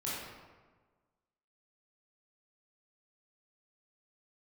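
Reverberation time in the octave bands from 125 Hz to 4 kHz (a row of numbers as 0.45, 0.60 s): 1.5, 1.5, 1.4, 1.3, 1.1, 0.85 s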